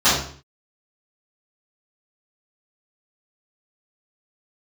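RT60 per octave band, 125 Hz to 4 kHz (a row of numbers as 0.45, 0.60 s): 0.60, 0.55, 0.50, 0.50, 0.45, 0.45 s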